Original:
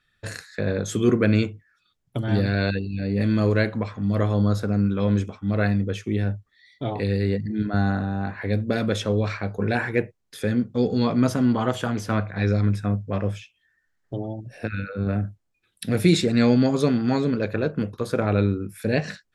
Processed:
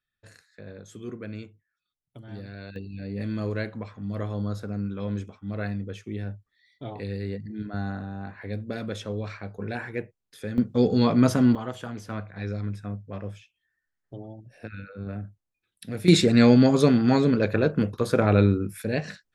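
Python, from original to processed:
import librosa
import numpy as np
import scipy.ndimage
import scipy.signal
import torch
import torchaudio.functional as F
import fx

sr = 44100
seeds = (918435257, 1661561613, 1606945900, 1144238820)

y = fx.gain(x, sr, db=fx.steps((0.0, -18.0), (2.76, -9.0), (10.58, 1.0), (11.55, -10.0), (16.08, 2.0), (18.82, -4.5)))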